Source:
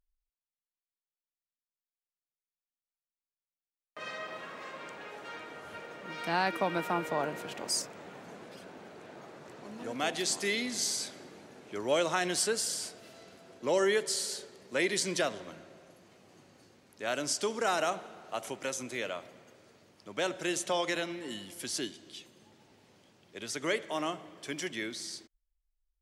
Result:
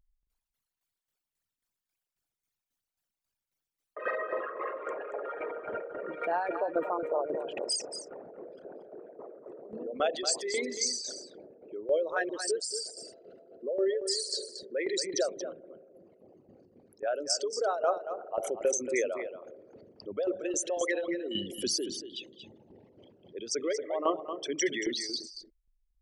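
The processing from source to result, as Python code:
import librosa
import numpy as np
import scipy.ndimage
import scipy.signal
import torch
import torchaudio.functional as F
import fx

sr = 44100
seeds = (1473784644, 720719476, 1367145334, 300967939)

p1 = fx.envelope_sharpen(x, sr, power=3.0)
p2 = fx.rider(p1, sr, range_db=5, speed_s=0.5)
p3 = fx.tremolo_shape(p2, sr, shape='saw_down', hz=3.7, depth_pct=75)
p4 = fx.dispersion(p3, sr, late='highs', ms=44.0, hz=370.0, at=(12.29, 12.74))
p5 = p4 + fx.echo_single(p4, sr, ms=230, db=-10.0, dry=0)
y = p5 * 10.0 ** (6.0 / 20.0)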